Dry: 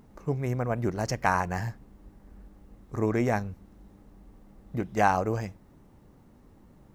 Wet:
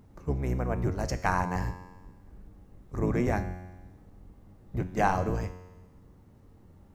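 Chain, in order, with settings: octave divider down 1 oct, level +2 dB; feedback comb 91 Hz, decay 1.2 s, harmonics all, mix 70%; trim +6 dB

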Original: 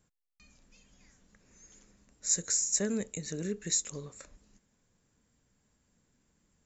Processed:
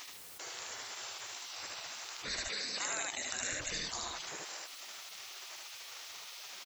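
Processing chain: spectral gate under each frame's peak -25 dB weak; 2.44–3.50 s: high-pass 340 Hz -> 110 Hz 12 dB/octave; delay 76 ms -4 dB; level flattener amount 70%; trim +9.5 dB

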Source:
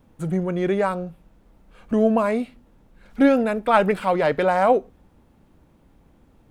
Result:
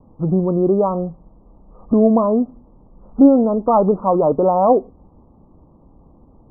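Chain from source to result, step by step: steep low-pass 1.2 kHz 96 dB/octave; dynamic bell 280 Hz, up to +5 dB, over -33 dBFS, Q 1.4; in parallel at +2 dB: compression, threshold -24 dBFS, peak gain reduction 15.5 dB

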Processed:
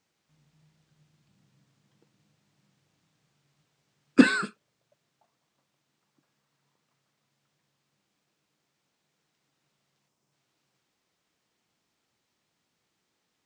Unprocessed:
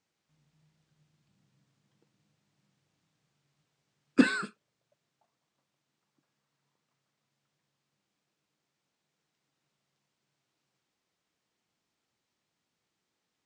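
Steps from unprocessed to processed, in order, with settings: time-frequency box 10.08–10.33 s, 1.3–4.9 kHz -6 dB; trim +5 dB

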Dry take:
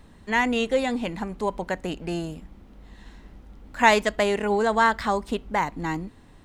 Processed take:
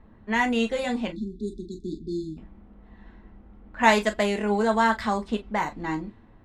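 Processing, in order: level-controlled noise filter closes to 1.5 kHz, open at -19 dBFS; spectral selection erased 1.12–2.38 s, 420–3400 Hz; reverberation, pre-delay 5 ms, DRR 4 dB; trim -3 dB

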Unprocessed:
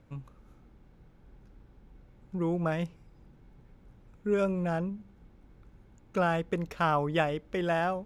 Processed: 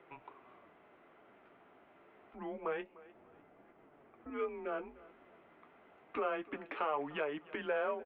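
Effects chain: 2.81–4.30 s: tilt EQ -3 dB/octave; compression 4:1, threshold -38 dBFS, peak gain reduction 14 dB; in parallel at -1 dB: peak limiter -36 dBFS, peak gain reduction 11 dB; on the sum: saturation -24.5 dBFS, distortion -27 dB; flange 0.27 Hz, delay 5.9 ms, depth 7.1 ms, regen -40%; on a send: feedback delay 301 ms, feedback 35%, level -20.5 dB; on the sum: mistuned SSB -150 Hz 520–3100 Hz; trim +7 dB

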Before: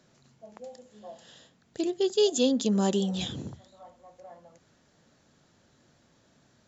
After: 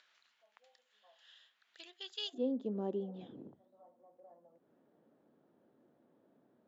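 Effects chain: peaking EQ 3.3 kHz +6 dB 0.82 oct; upward compressor, threshold -47 dBFS; ladder band-pass 2.1 kHz, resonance 20%, from 2.33 s 410 Hz; trim +1.5 dB

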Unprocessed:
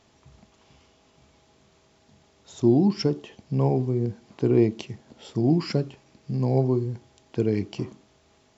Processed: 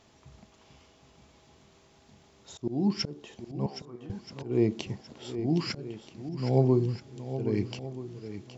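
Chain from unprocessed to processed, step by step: slow attack 329 ms; 3.66–4.10 s: band-pass filter 1.2 kHz, Q 3.8; shuffle delay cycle 1279 ms, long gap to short 1.5:1, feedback 30%, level -11 dB

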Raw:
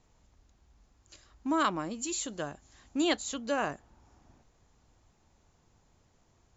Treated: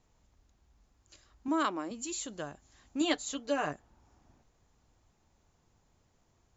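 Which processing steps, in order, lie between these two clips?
1.48–1.91 s: resonant low shelf 190 Hz -12.5 dB, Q 1.5; 3.00–3.73 s: comb 6.8 ms, depth 70%; trim -3.5 dB

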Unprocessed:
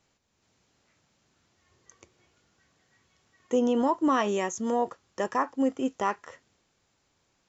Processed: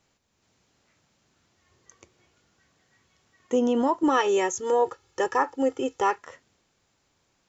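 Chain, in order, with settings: 4.03–6.18 s: comb 2.3 ms, depth 92%; trim +1.5 dB

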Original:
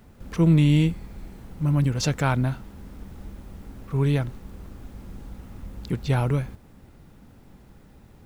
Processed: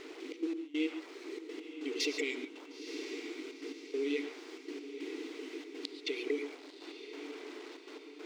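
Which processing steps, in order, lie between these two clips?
tracing distortion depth 0.1 ms; reverb removal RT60 0.84 s; FFT band-reject 480–1900 Hz; peak limiter -22 dBFS, peak gain reduction 12 dB; compression 8:1, threshold -37 dBFS, peak gain reduction 12 dB; bit crusher 10-bit; trance gate "xxx.x..xxx" 141 bpm -24 dB; brick-wall FIR high-pass 280 Hz; distance through air 150 m; on a send: echo that smears into a reverb 958 ms, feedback 53%, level -10.5 dB; on the sum: gated-style reverb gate 160 ms rising, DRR 9.5 dB; trim +15 dB

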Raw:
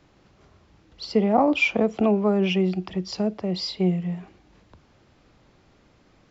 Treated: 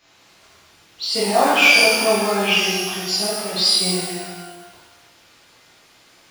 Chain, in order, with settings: bass shelf 210 Hz -11 dB; in parallel at -4 dB: short-mantissa float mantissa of 2-bit; on the sum: tilt shelf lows -7.5 dB, about 1.3 kHz; pitch-shifted reverb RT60 1.2 s, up +12 st, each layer -8 dB, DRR -9.5 dB; trim -5 dB

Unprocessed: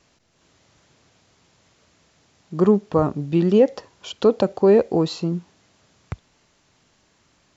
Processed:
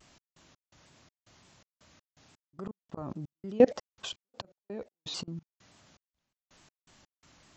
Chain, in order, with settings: peaking EQ 440 Hz -7 dB 0.31 oct; slow attack 706 ms; level held to a coarse grid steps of 23 dB; trance gate "x.x.xx.xx.x." 83 bpm -60 dB; vibrato with a chosen wave saw down 3.5 Hz, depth 160 cents; trim +8 dB

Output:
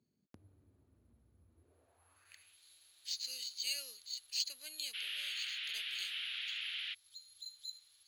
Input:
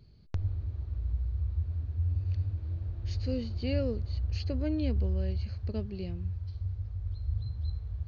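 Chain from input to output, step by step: careless resampling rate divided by 4×, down none, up hold; 4.93–6.93 s: band noise 1.3–3.1 kHz -44 dBFS; band-pass sweep 230 Hz -> 3.9 kHz, 1.49–2.62 s; differentiator; trim +18 dB

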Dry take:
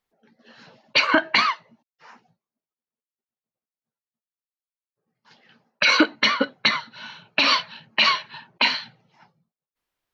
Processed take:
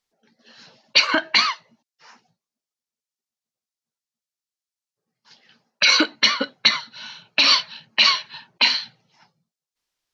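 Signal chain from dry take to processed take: peaking EQ 5.6 kHz +12 dB 1.7 oct; trim -3.5 dB

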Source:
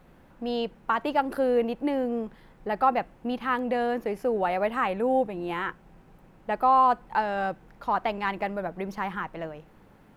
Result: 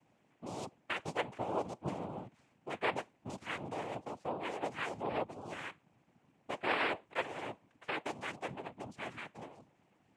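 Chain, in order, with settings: flange 1.8 Hz, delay 5.6 ms, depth 1.4 ms, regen +82%; noise-vocoded speech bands 4; harmonic-percussive split harmonic -5 dB; trim -7 dB

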